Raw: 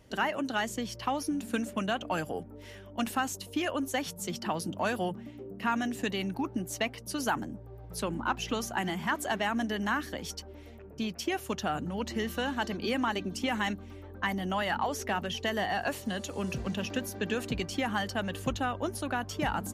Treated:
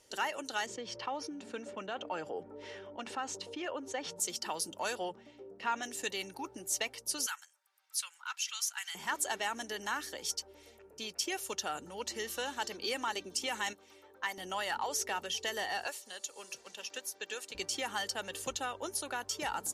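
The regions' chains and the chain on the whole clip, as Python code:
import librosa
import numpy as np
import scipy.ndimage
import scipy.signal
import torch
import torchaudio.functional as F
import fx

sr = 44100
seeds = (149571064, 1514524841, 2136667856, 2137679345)

y = fx.chain(x, sr, fx.highpass(hz=110.0, slope=12),
    fx.spacing_loss(db_at_10k=31),
    fx.env_flatten(amount_pct=50), at=(0.66, 4.2))
y = fx.chain(y, sr, fx.lowpass(hz=4600.0, slope=12),
    fx.peak_eq(hz=660.0, db=3.0, octaves=0.9), at=(4.95, 5.83))
y = fx.chain(y, sr, fx.highpass(hz=1400.0, slope=24),
    fx.notch(hz=1800.0, q=22.0), at=(7.26, 8.95))
y = fx.chain(y, sr, fx.highpass(hz=420.0, slope=6),
    fx.peak_eq(hz=9600.0, db=-4.0, octaves=1.1), at=(13.73, 14.38))
y = fx.chain(y, sr, fx.highpass(hz=610.0, slope=6),
    fx.upward_expand(threshold_db=-45.0, expansion=1.5), at=(15.87, 17.55))
y = scipy.signal.sosfilt(scipy.signal.butter(2, 10000.0, 'lowpass', fs=sr, output='sos'), y)
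y = fx.bass_treble(y, sr, bass_db=-15, treble_db=14)
y = y + 0.32 * np.pad(y, (int(2.2 * sr / 1000.0), 0))[:len(y)]
y = y * librosa.db_to_amplitude(-5.5)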